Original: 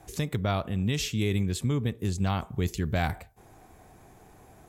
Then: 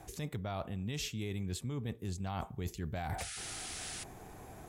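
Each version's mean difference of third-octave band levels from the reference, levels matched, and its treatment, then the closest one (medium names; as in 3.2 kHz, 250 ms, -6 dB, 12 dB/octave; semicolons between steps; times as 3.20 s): 7.0 dB: dynamic bell 790 Hz, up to +5 dB, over -46 dBFS, Q 2.6; peak limiter -20 dBFS, peak gain reduction 7 dB; reverse; compression 12:1, threshold -38 dBFS, peak gain reduction 14.5 dB; reverse; painted sound noise, 3.18–4.04 s, 1.2–11 kHz -47 dBFS; trim +3 dB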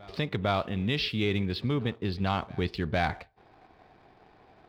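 4.5 dB: steep low-pass 4.9 kHz 72 dB/octave; bass shelf 200 Hz -10 dB; waveshaping leveller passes 1; on a send: reverse echo 456 ms -23.5 dB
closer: second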